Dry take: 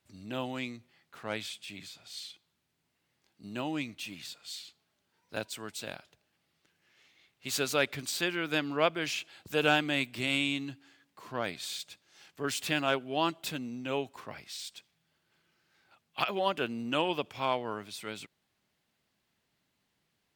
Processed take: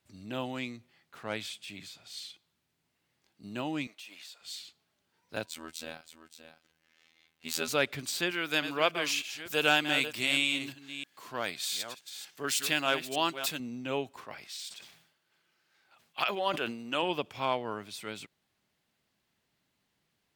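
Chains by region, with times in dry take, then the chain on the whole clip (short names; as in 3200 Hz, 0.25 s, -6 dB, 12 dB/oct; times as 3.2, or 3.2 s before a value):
3.87–4.41 Chebyshev high-pass 620 Hz + compressor 3:1, threshold -45 dBFS
5.46–7.68 comb 3.9 ms, depth 38% + echo 0.571 s -11.5 dB + robotiser 80.7 Hz
8.31–13.6 reverse delay 0.303 s, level -10 dB + tilt +2 dB/oct
14.24–17.03 low shelf 270 Hz -11 dB + sustainer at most 79 dB/s
whole clip: dry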